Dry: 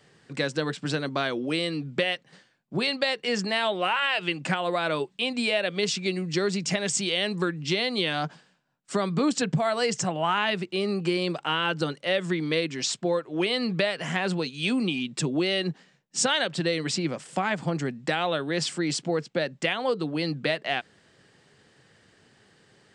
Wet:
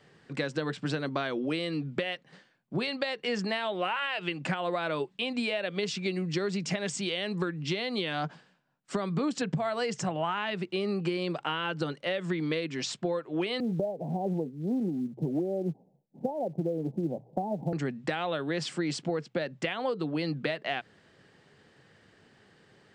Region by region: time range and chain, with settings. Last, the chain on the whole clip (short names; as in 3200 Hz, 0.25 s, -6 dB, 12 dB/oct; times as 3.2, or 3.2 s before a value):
13.6–17.73 steep low-pass 840 Hz 72 dB/oct + short-mantissa float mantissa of 4-bit
whole clip: notches 60/120 Hz; compressor, threshold -26 dBFS; high shelf 5700 Hz -11.5 dB